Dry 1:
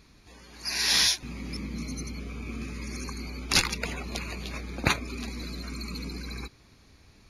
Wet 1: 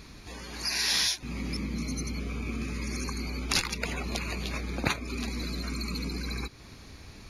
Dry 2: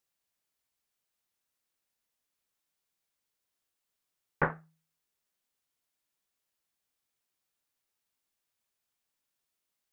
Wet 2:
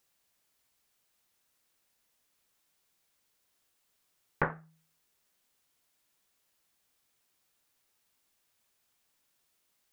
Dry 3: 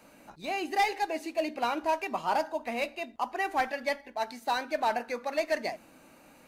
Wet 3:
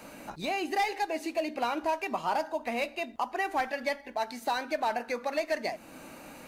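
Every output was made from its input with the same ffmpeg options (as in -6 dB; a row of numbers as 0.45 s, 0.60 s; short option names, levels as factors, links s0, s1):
-af "acompressor=threshold=0.00631:ratio=2,volume=2.82"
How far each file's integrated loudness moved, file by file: -2.0 LU, -1.5 LU, -0.5 LU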